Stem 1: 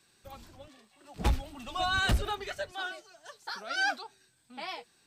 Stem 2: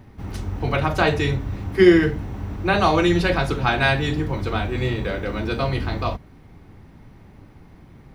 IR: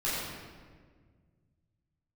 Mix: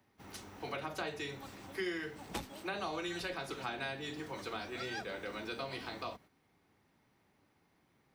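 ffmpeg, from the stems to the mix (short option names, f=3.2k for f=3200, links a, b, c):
-filter_complex "[0:a]tremolo=f=5.4:d=0.73,adelay=1100,volume=-1.5dB[a];[1:a]highpass=f=490:p=1,volume=-11dB,asplit=2[b][c];[c]apad=whole_len=271790[d];[a][d]sidechaincompress=threshold=-45dB:ratio=8:attack=16:release=144[e];[e][b]amix=inputs=2:normalize=0,highshelf=f=3.5k:g=7,acrossover=split=150|500[f][g][h];[f]acompressor=threshold=-59dB:ratio=4[i];[g]acompressor=threshold=-42dB:ratio=4[j];[h]acompressor=threshold=-40dB:ratio=4[k];[i][j][k]amix=inputs=3:normalize=0,agate=range=-7dB:threshold=-58dB:ratio=16:detection=peak"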